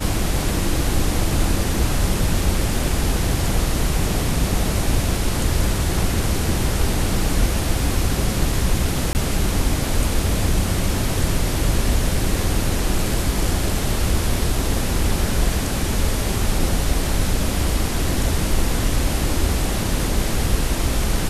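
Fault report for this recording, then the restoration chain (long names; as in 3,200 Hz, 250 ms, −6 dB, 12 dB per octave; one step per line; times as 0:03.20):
0:09.13–0:09.15: drop-out 19 ms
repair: repair the gap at 0:09.13, 19 ms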